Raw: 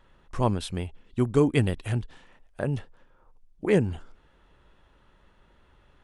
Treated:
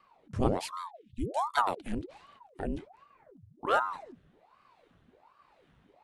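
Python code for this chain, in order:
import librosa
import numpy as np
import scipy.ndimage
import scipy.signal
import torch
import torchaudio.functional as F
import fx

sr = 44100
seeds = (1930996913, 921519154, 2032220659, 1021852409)

y = fx.ellip_bandstop(x, sr, low_hz=150.0, high_hz=2400.0, order=3, stop_db=40, at=(0.71, 1.56), fade=0.02)
y = fx.rotary(y, sr, hz=1.2)
y = fx.ring_lfo(y, sr, carrier_hz=630.0, swing_pct=85, hz=1.3)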